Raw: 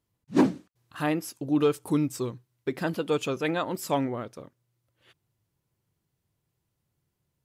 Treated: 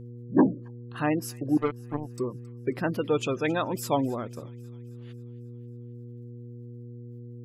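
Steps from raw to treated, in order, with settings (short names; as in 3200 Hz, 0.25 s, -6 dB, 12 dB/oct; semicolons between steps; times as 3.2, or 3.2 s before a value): spectral gate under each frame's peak -25 dB strong; 1.57–2.18 power-law curve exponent 3; buzz 120 Hz, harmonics 4, -43 dBFS -7 dB/oct; on a send: thin delay 0.27 s, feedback 55%, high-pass 1800 Hz, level -19 dB; on the sum: gain +1 dB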